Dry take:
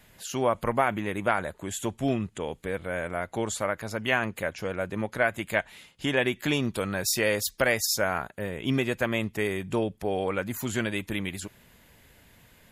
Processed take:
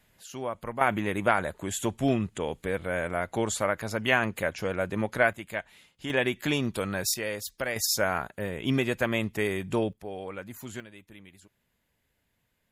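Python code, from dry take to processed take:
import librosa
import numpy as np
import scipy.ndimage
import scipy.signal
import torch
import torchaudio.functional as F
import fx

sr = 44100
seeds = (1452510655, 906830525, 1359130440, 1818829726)

y = fx.gain(x, sr, db=fx.steps((0.0, -8.5), (0.81, 1.5), (5.33, -7.0), (6.1, -1.0), (7.14, -7.5), (7.76, 0.0), (9.93, -9.5), (10.8, -19.0)))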